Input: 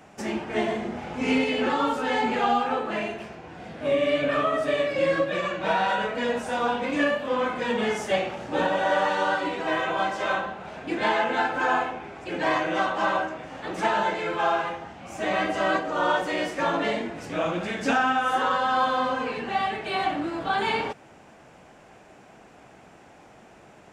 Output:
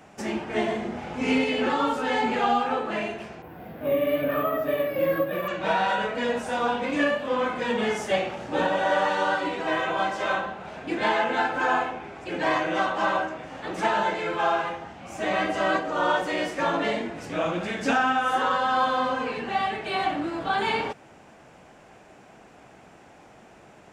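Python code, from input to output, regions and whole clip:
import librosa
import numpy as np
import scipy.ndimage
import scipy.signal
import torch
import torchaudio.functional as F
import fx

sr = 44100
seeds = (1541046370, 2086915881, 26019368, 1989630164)

y = fx.chain(x, sr, fx.lowpass(hz=1400.0, slope=6),
    fx.resample_bad(factor=3, down='none', up='hold'), at=(3.42, 5.48))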